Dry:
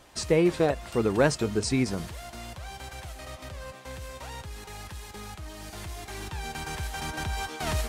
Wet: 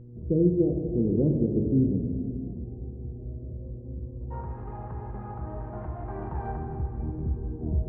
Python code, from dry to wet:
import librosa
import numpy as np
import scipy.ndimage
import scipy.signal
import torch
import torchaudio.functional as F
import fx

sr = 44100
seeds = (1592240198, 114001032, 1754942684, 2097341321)

y = fx.cheby2_lowpass(x, sr, hz=fx.steps((0.0, 2100.0), (4.3, 6400.0), (6.55, 2300.0)), order=4, stop_db=80)
y = fx.dmg_buzz(y, sr, base_hz=120.0, harmonics=4, level_db=-48.0, tilt_db=-9, odd_only=False)
y = fx.rev_plate(y, sr, seeds[0], rt60_s=2.8, hf_ratio=0.95, predelay_ms=0, drr_db=1.0)
y = F.gain(torch.from_numpy(y), 2.5).numpy()